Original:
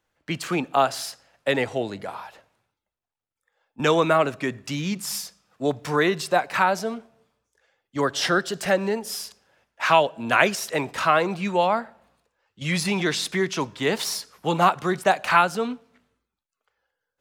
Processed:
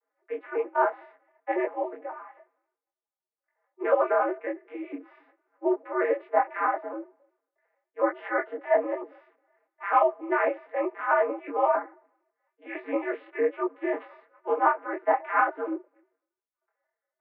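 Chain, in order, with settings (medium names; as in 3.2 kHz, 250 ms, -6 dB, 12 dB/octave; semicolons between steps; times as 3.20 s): vocoder on a broken chord major triad, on F#3, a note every 91 ms; mistuned SSB +91 Hz 290–2100 Hz; detune thickener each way 38 cents; trim +2.5 dB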